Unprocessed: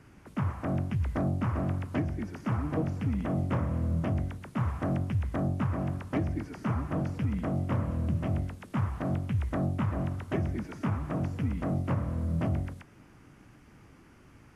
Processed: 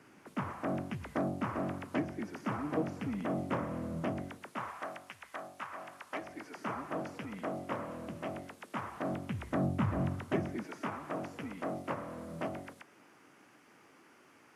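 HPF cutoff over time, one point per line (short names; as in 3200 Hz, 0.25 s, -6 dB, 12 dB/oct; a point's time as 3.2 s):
4.27 s 250 Hz
4.94 s 1000 Hz
5.94 s 1000 Hz
6.65 s 390 Hz
8.82 s 390 Hz
10.01 s 94 Hz
10.79 s 380 Hz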